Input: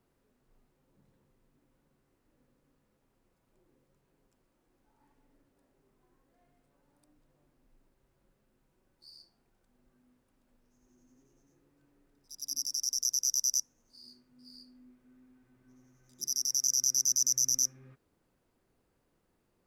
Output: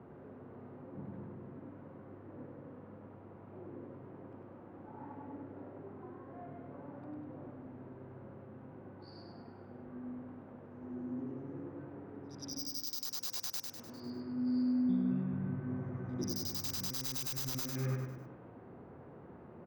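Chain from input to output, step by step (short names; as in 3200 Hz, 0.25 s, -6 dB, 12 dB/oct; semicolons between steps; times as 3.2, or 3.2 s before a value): LPF 8200 Hz 12 dB/oct; low-pass opened by the level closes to 1200 Hz, open at -26.5 dBFS; HPF 81 Hz 24 dB/oct; sine folder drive 13 dB, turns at -22.5 dBFS; compressor 16:1, threshold -37 dBFS, peak gain reduction 12.5 dB; bell 6300 Hz -12.5 dB 1.2 oct; feedback echo 0.1 s, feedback 50%, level -4 dB; 14.67–16.9 echoes that change speed 0.219 s, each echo -5 st, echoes 3, each echo -6 dB; gain +5.5 dB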